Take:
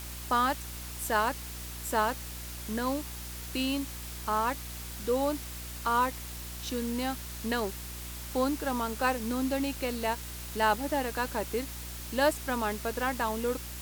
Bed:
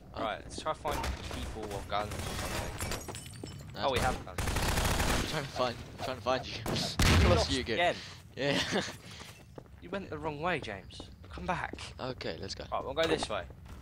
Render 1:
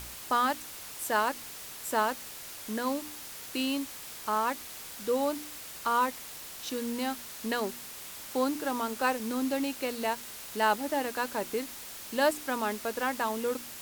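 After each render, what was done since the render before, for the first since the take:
hum removal 60 Hz, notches 6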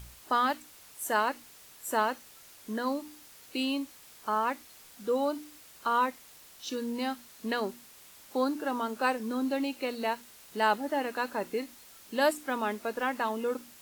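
noise reduction from a noise print 10 dB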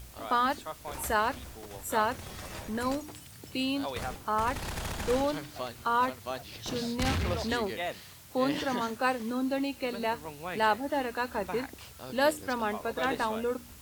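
mix in bed −6 dB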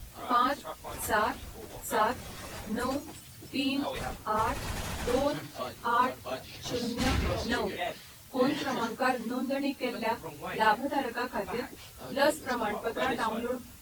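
random phases in long frames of 50 ms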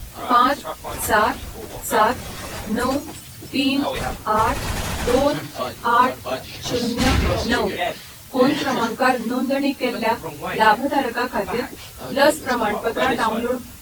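level +10.5 dB
brickwall limiter −3 dBFS, peak gain reduction 1 dB

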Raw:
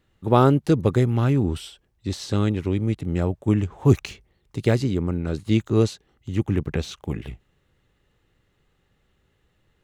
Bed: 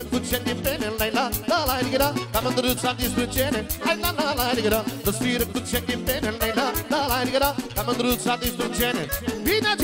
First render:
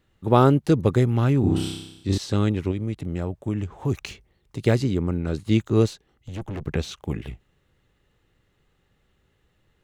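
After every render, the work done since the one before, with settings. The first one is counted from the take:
0:01.40–0:02.18: flutter between parallel walls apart 5.3 metres, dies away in 0.88 s
0:02.71–0:04.64: downward compressor 2 to 1, threshold −26 dBFS
0:05.86–0:06.66: tube saturation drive 28 dB, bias 0.4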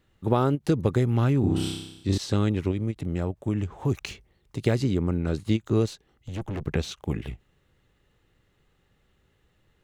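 downward compressor 6 to 1, threshold −18 dBFS, peak gain reduction 7.5 dB
every ending faded ahead of time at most 580 dB per second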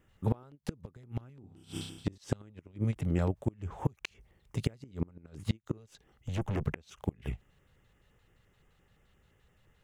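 auto-filter notch square 5.8 Hz 320–4,100 Hz
gate with flip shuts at −17 dBFS, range −30 dB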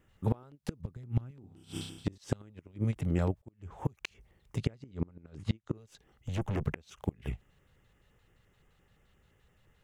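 0:00.80–0:01.31: bass and treble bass +8 dB, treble 0 dB
0:03.42–0:03.97: fade in
0:04.58–0:05.75: high-frequency loss of the air 68 metres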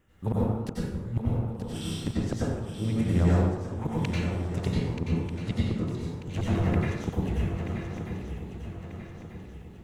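feedback echo with a long and a short gap by turns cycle 1,240 ms, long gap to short 3 to 1, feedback 41%, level −8 dB
dense smooth reverb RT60 1.1 s, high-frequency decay 0.6×, pre-delay 80 ms, DRR −6.5 dB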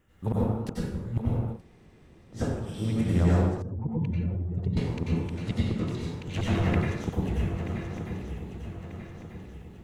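0:01.57–0:02.37: fill with room tone, crossfade 0.10 s
0:03.62–0:04.77: expanding power law on the bin magnitudes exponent 1.7
0:05.79–0:06.82: parametric band 2,900 Hz +5.5 dB 2.2 octaves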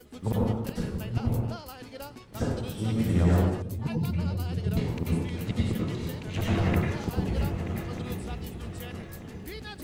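mix in bed −20.5 dB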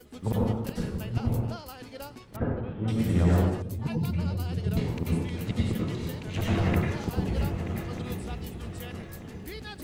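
0:02.36–0:02.88: low-pass filter 2,100 Hz 24 dB per octave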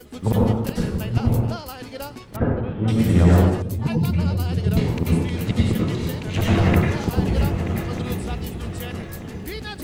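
level +8 dB

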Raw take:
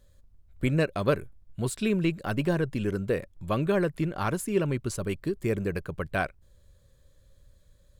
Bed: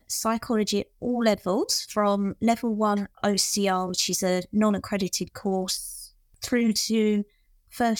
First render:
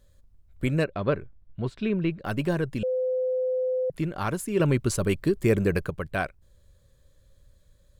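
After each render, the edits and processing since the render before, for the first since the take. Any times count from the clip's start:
0:00.84–0:02.25: high-frequency loss of the air 230 metres
0:02.83–0:03.90: beep over 511 Hz −23 dBFS
0:04.60–0:05.90: clip gain +6 dB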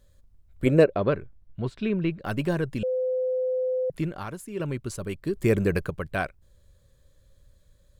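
0:00.65–0:01.07: parametric band 470 Hz +13.5 dB → +7.5 dB 1.6 octaves
0:04.08–0:05.42: duck −8 dB, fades 0.18 s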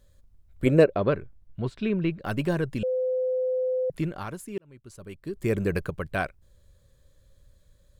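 0:04.58–0:06.03: fade in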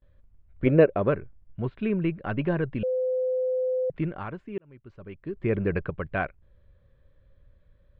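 low-pass filter 2,700 Hz 24 dB per octave
noise gate with hold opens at −53 dBFS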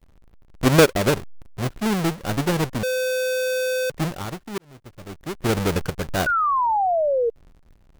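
each half-wave held at its own peak
0:06.26–0:07.30: sound drawn into the spectrogram fall 450–1,500 Hz −20 dBFS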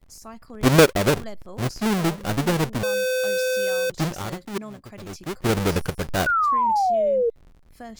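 mix in bed −16 dB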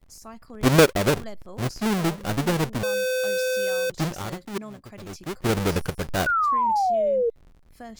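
level −1.5 dB

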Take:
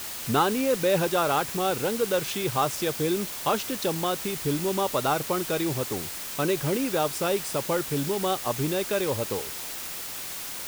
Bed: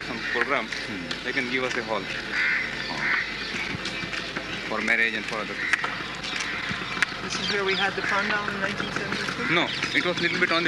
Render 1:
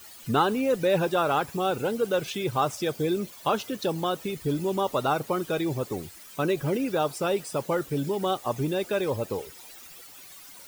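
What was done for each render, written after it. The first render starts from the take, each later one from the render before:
broadband denoise 15 dB, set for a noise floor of −36 dBFS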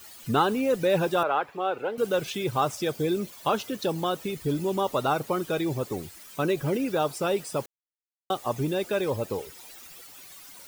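0:01.23–0:01.98: three-way crossover with the lows and the highs turned down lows −17 dB, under 360 Hz, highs −22 dB, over 3,100 Hz
0:07.66–0:08.30: silence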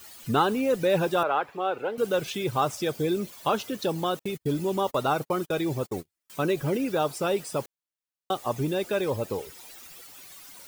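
0:04.19–0:06.30: noise gate −35 dBFS, range −40 dB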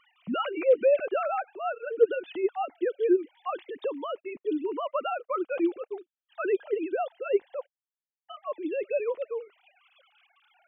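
three sine waves on the formant tracks
phaser whose notches keep moving one way rising 0.22 Hz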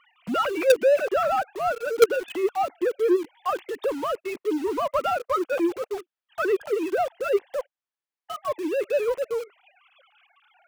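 mid-hump overdrive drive 12 dB, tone 1,800 Hz, clips at −9.5 dBFS
in parallel at −10.5 dB: log-companded quantiser 2 bits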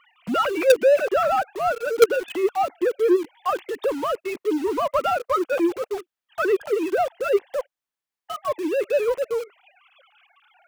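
level +2.5 dB
brickwall limiter −3 dBFS, peak gain reduction 1 dB

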